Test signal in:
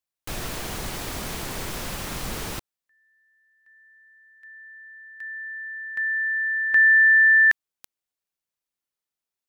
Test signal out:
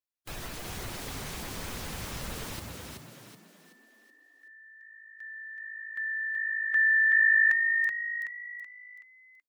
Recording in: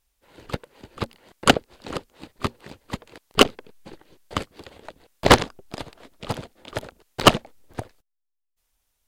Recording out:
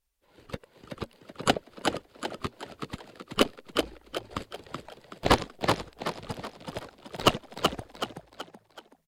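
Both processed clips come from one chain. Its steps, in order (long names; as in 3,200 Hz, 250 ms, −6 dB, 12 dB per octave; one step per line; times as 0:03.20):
spectral magnitudes quantised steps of 15 dB
echo with shifted repeats 377 ms, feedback 42%, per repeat +53 Hz, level −4 dB
level −7.5 dB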